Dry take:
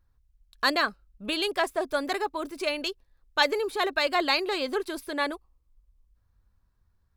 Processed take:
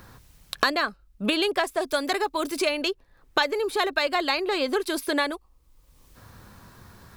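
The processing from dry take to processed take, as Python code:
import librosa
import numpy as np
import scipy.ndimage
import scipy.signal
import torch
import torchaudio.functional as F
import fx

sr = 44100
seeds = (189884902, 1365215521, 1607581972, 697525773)

y = fx.band_squash(x, sr, depth_pct=100)
y = F.gain(torch.from_numpy(y), 1.5).numpy()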